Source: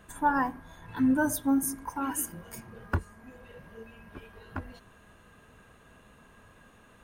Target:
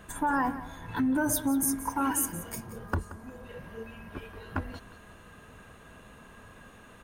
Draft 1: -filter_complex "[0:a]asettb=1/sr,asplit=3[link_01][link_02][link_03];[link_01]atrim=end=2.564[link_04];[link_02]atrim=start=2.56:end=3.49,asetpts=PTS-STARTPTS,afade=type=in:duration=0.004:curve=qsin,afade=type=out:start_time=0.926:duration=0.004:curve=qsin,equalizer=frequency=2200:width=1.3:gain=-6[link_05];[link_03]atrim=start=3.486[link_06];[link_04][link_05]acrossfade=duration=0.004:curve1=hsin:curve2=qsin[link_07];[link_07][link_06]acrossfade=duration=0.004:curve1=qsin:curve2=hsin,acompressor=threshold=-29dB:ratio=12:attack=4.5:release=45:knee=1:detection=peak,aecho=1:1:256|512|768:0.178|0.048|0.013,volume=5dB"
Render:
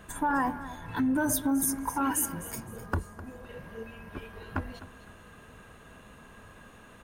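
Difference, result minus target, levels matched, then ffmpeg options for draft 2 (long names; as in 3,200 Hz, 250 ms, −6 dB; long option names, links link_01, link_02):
echo 78 ms late
-filter_complex "[0:a]asettb=1/sr,asplit=3[link_01][link_02][link_03];[link_01]atrim=end=2.564[link_04];[link_02]atrim=start=2.56:end=3.49,asetpts=PTS-STARTPTS,afade=type=in:duration=0.004:curve=qsin,afade=type=out:start_time=0.926:duration=0.004:curve=qsin,equalizer=frequency=2200:width=1.3:gain=-6[link_05];[link_03]atrim=start=3.486[link_06];[link_04][link_05]acrossfade=duration=0.004:curve1=hsin:curve2=qsin[link_07];[link_07][link_06]acrossfade=duration=0.004:curve1=qsin:curve2=hsin,acompressor=threshold=-29dB:ratio=12:attack=4.5:release=45:knee=1:detection=peak,aecho=1:1:178|356|534:0.178|0.048|0.013,volume=5dB"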